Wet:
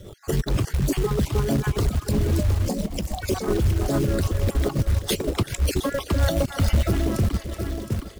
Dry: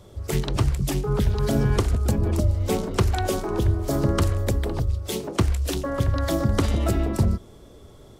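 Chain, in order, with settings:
time-frequency cells dropped at random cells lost 34%
repeating echo 715 ms, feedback 35%, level −11.5 dB
brickwall limiter −19 dBFS, peak gain reduction 10.5 dB
reverb reduction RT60 0.64 s
feedback echo with a high-pass in the loop 379 ms, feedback 72%, high-pass 890 Hz, level −13.5 dB
rotating-speaker cabinet horn 7 Hz
soft clipping −20.5 dBFS, distortion −23 dB
0:01.15–0:01.87: high-pass filter 43 Hz 12 dB per octave
0:02.68–0:03.23: phaser with its sweep stopped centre 400 Hz, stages 6
0:06.18–0:06.87: comb filter 1.4 ms, depth 56%
floating-point word with a short mantissa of 2 bits
level +9 dB

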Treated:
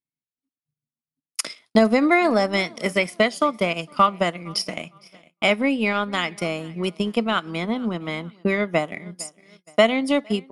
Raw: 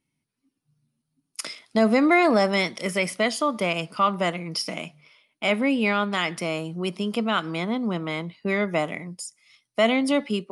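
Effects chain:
repeating echo 459 ms, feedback 40%, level −21 dB
noise gate −51 dBFS, range −21 dB
transient designer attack +7 dB, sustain −6 dB

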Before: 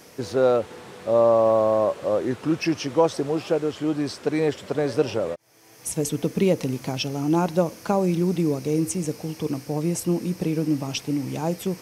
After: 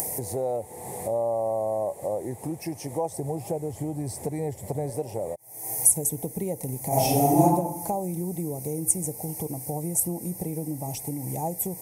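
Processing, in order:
upward compression, threshold −22 dBFS
0:03.11–0:04.90: parametric band 100 Hz +10 dB 1.7 octaves
downward compressor 3 to 1, threshold −23 dBFS, peak gain reduction 7.5 dB
drawn EQ curve 120 Hz 0 dB, 260 Hz −8 dB, 550 Hz −3 dB, 820 Hz +4 dB, 1,400 Hz −28 dB, 2,000 Hz −7 dB, 2,900 Hz −21 dB, 5,400 Hz −10 dB, 9,400 Hz +13 dB
0:06.88–0:07.42: thrown reverb, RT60 0.92 s, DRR −12 dB

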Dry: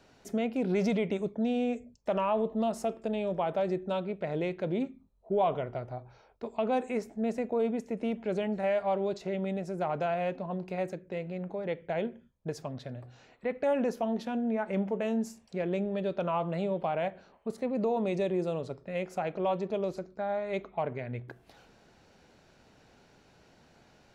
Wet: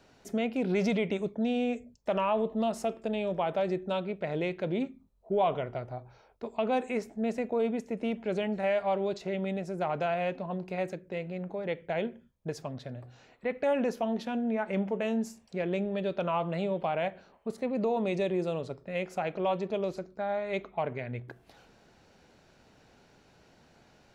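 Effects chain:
dynamic equaliser 2,800 Hz, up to +4 dB, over −48 dBFS, Q 0.8

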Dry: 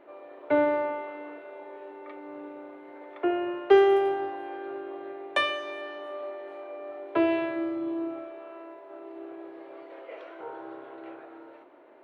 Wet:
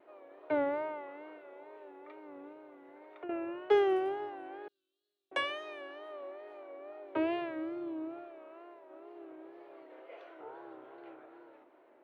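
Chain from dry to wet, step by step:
0:02.52–0:03.30: downward compressor 2 to 1, threshold −42 dBFS, peak gain reduction 11.5 dB
0:04.68–0:05.32: inverse Chebyshev high-pass filter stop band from 2,300 Hz, stop band 40 dB
tape wow and flutter 85 cents
level −8 dB

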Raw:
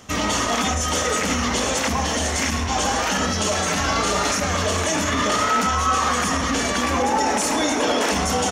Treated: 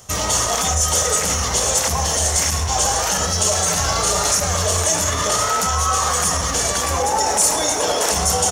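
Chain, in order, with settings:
in parallel at −10.5 dB: dead-zone distortion −39 dBFS
on the sum: drawn EQ curve 160 Hz 0 dB, 240 Hz −17 dB, 410 Hz −4 dB, 720 Hz −2 dB, 2,400 Hz −8 dB, 9,000 Hz +8 dB
level +2 dB

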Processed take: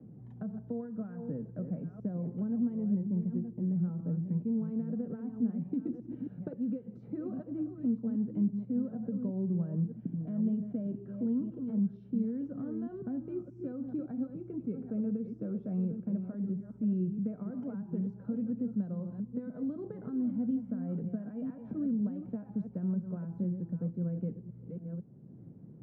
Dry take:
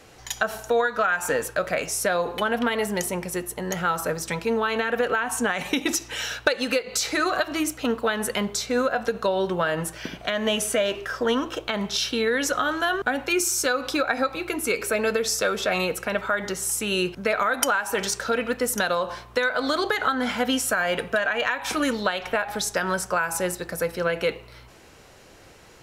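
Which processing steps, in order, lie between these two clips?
delay that plays each chunk backwards 500 ms, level −8.5 dB
flat-topped band-pass 170 Hz, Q 1.6
multiband upward and downward compressor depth 40%
level +2.5 dB

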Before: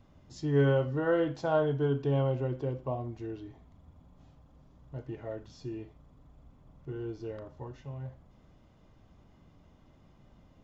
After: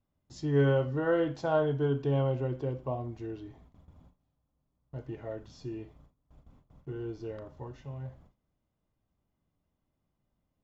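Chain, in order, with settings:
noise gate with hold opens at −47 dBFS

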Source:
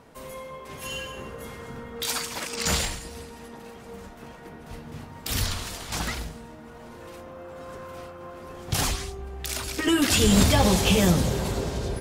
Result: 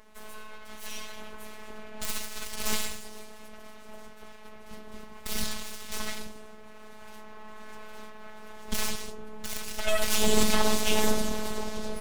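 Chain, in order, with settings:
full-wave rectification
phases set to zero 215 Hz

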